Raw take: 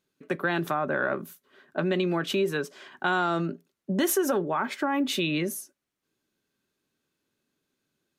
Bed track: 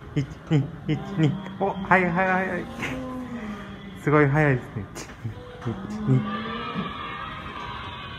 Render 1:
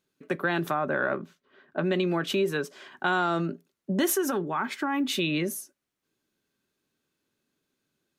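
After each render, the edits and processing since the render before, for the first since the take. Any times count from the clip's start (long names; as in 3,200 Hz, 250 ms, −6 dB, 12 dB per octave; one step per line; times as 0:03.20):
0:01.16–0:01.84: high-frequency loss of the air 160 metres
0:04.15–0:05.19: parametric band 560 Hz −8 dB 0.65 octaves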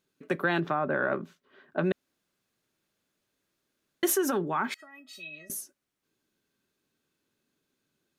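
0:00.60–0:01.12: high-frequency loss of the air 230 metres
0:01.92–0:04.03: fill with room tone
0:04.74–0:05.50: tuned comb filter 640 Hz, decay 0.15 s, mix 100%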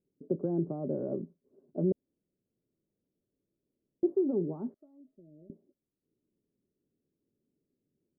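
inverse Chebyshev low-pass filter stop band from 2,200 Hz, stop band 70 dB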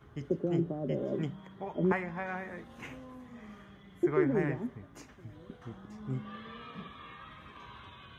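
mix in bed track −15.5 dB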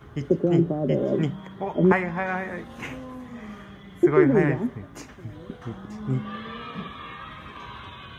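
level +10 dB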